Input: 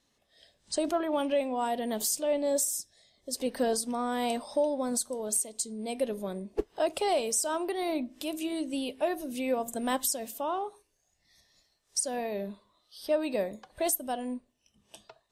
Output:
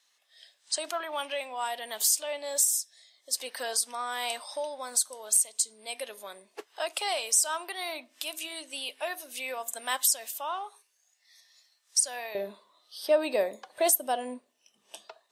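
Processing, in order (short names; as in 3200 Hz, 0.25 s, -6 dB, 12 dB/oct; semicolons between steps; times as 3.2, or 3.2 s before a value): HPF 1200 Hz 12 dB/oct, from 12.35 s 460 Hz; gain +5.5 dB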